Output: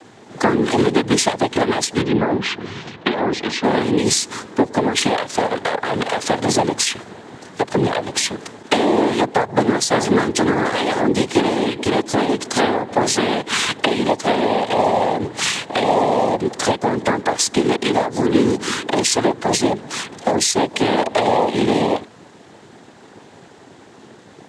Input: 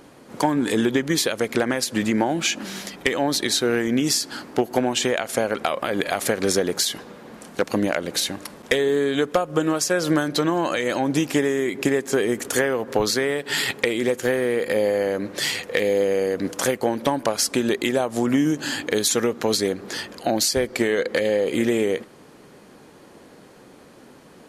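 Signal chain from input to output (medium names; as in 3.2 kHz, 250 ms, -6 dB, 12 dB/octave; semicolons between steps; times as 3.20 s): noise-vocoded speech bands 6; 2.02–3.64 s: distance through air 200 m; trim +4.5 dB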